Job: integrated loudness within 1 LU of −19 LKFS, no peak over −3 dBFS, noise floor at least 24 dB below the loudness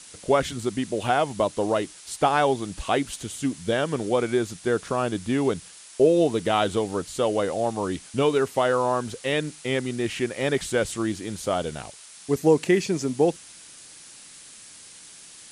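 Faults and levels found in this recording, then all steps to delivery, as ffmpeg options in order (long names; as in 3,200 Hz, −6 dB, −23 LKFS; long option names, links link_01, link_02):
background noise floor −46 dBFS; target noise floor −49 dBFS; integrated loudness −25.0 LKFS; sample peak −7.0 dBFS; target loudness −19.0 LKFS
→ -af "afftdn=noise_reduction=6:noise_floor=-46"
-af "volume=6dB,alimiter=limit=-3dB:level=0:latency=1"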